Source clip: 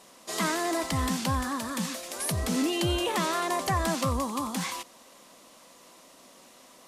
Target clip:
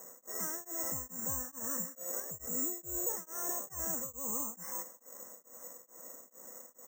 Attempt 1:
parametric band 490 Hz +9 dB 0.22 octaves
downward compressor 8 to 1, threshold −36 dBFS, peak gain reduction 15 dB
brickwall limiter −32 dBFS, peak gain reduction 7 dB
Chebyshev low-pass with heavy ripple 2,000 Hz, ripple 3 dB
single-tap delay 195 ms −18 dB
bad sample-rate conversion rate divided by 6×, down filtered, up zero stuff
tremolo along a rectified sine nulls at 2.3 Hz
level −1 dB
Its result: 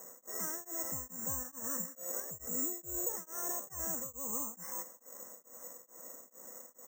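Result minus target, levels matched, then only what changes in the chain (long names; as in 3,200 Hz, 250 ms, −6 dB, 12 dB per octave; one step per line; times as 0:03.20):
downward compressor: peak gain reduction +15 dB
remove: downward compressor 8 to 1, threshold −36 dBFS, peak gain reduction 15 dB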